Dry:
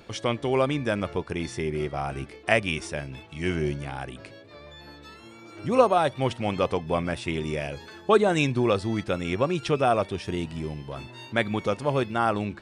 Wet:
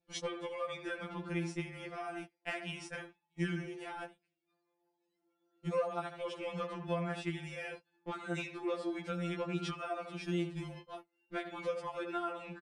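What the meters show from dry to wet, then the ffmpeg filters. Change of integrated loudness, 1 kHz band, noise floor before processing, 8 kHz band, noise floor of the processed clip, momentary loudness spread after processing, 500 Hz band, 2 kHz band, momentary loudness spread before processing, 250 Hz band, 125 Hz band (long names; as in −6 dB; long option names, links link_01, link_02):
−13.5 dB, −14.5 dB, −48 dBFS, −11.0 dB, −84 dBFS, 8 LU, −14.5 dB, −12.0 dB, 17 LU, −11.5 dB, −12.5 dB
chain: -filter_complex "[0:a]asoftclip=type=tanh:threshold=-10dB,acompressor=mode=upward:threshold=-39dB:ratio=2.5,highpass=frequency=60:poles=1,equalizer=frequency=960:width=2.3:gain=-3,asplit=2[link_01][link_02];[link_02]adelay=78,lowpass=frequency=1700:poles=1,volume=-9dB,asplit=2[link_03][link_04];[link_04]adelay=78,lowpass=frequency=1700:poles=1,volume=0.27,asplit=2[link_05][link_06];[link_06]adelay=78,lowpass=frequency=1700:poles=1,volume=0.27[link_07];[link_01][link_03][link_05][link_07]amix=inputs=4:normalize=0,agate=range=-39dB:threshold=-33dB:ratio=16:detection=peak,adynamicequalizer=threshold=0.01:dfrequency=1400:dqfactor=0.88:tfrequency=1400:tqfactor=0.88:attack=5:release=100:ratio=0.375:range=3:mode=boostabove:tftype=bell,acompressor=threshold=-37dB:ratio=8,afftfilt=real='re*2.83*eq(mod(b,8),0)':imag='im*2.83*eq(mod(b,8),0)':win_size=2048:overlap=0.75,volume=3.5dB"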